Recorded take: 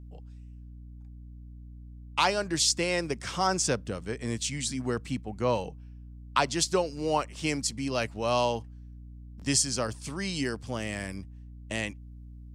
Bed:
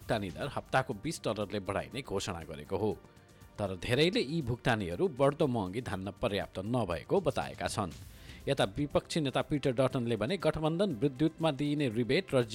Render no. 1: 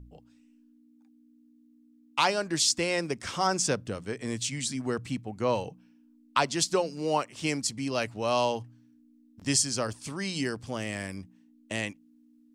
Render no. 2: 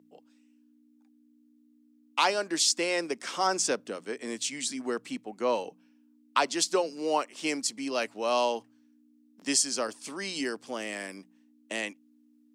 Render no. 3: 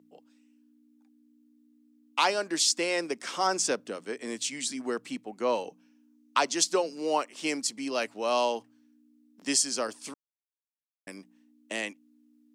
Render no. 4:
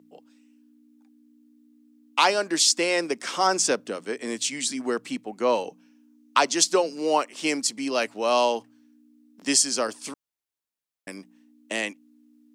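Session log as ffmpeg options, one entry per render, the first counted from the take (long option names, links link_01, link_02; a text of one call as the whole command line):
ffmpeg -i in.wav -af "bandreject=frequency=60:width_type=h:width=4,bandreject=frequency=120:width_type=h:width=4,bandreject=frequency=180:width_type=h:width=4" out.wav
ffmpeg -i in.wav -af "highpass=frequency=250:width=0.5412,highpass=frequency=250:width=1.3066" out.wav
ffmpeg -i in.wav -filter_complex "[0:a]asettb=1/sr,asplit=3[link_01][link_02][link_03];[link_01]atrim=end=5.674[link_04];[link_02]atrim=start=5.67:end=6.64,asetpts=PTS-STARTPTS,afade=type=in:duration=0.004:curve=qsin,afade=type=out:start_time=0.966:duration=0.004:curve=qsin,equalizer=frequency=6200:width_type=o:width=0.34:gain=6[link_05];[link_03]atrim=start=6.636[link_06];[link_04][link_05]acrossfade=duration=0.004:curve1=hsin:curve2=qsin[link_07];[link_07][link_06]acrossfade=duration=0.004:curve1=qsin:curve2=hsin,asplit=3[link_08][link_09][link_10];[link_08]atrim=end=10.14,asetpts=PTS-STARTPTS,afade=type=out:start_time=10.136:duration=0.004:curve=hsin[link_11];[link_09]atrim=start=10.14:end=11.07,asetpts=PTS-STARTPTS,volume=0[link_12];[link_10]atrim=start=11.07,asetpts=PTS-STARTPTS,afade=type=in:duration=0.004:curve=hsin[link_13];[link_11][link_12][link_13]concat=n=3:v=0:a=1" out.wav
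ffmpeg -i in.wav -af "volume=5dB" out.wav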